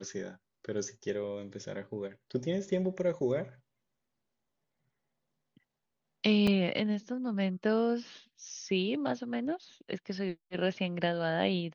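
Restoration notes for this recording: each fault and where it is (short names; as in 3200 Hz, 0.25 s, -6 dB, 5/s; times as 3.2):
6.47 gap 4.5 ms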